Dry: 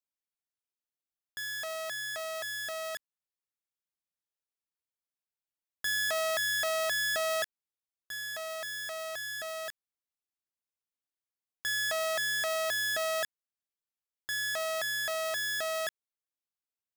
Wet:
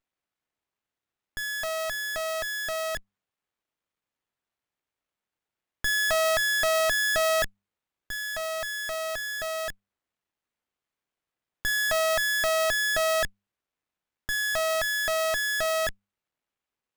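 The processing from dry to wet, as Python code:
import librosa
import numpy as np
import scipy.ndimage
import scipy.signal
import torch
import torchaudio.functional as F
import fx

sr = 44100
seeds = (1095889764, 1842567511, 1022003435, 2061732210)

y = fx.hum_notches(x, sr, base_hz=50, count=4)
y = fx.running_max(y, sr, window=9)
y = F.gain(torch.from_numpy(y), 7.5).numpy()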